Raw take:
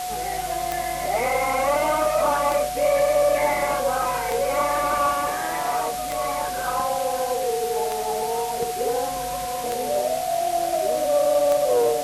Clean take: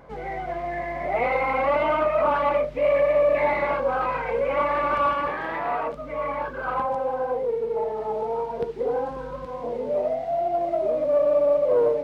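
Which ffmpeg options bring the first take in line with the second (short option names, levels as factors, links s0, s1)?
-af "adeclick=t=4,bandreject=f=730:w=30,afwtdn=0.02"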